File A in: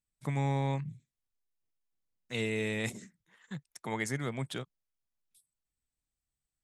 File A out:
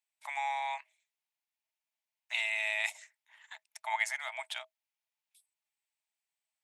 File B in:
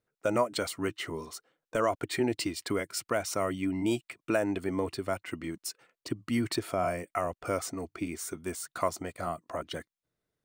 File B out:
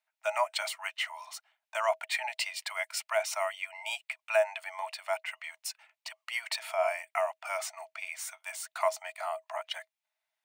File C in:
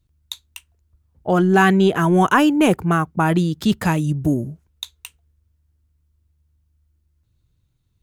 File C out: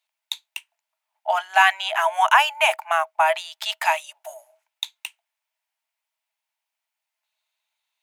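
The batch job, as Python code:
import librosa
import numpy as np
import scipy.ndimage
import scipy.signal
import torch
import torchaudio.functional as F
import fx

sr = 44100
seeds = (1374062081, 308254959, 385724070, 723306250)

y = scipy.signal.sosfilt(scipy.signal.cheby1(6, 9, 620.0, 'highpass', fs=sr, output='sos'), x)
y = y * 10.0 ** (7.5 / 20.0)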